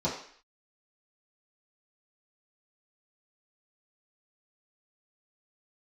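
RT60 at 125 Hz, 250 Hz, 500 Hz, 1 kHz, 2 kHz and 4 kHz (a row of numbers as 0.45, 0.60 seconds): 0.35, 0.50, 0.50, 0.55, 0.65, 0.60 seconds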